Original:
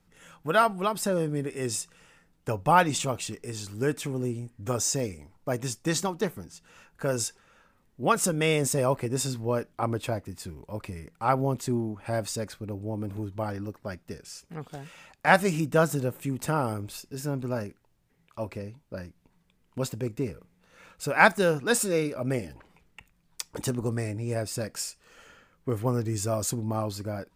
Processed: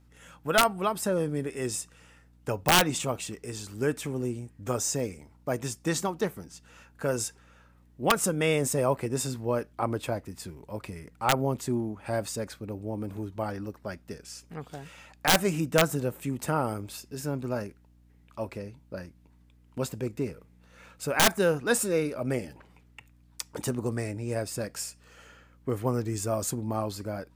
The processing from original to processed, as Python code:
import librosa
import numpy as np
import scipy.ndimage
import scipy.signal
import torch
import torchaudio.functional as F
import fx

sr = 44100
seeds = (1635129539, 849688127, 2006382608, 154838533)

y = fx.highpass(x, sr, hz=110.0, slope=6)
y = fx.add_hum(y, sr, base_hz=60, snr_db=29)
y = fx.dynamic_eq(y, sr, hz=4500.0, q=0.89, threshold_db=-41.0, ratio=4.0, max_db=-4)
y = (np.mod(10.0 ** (11.5 / 20.0) * y + 1.0, 2.0) - 1.0) / 10.0 ** (11.5 / 20.0)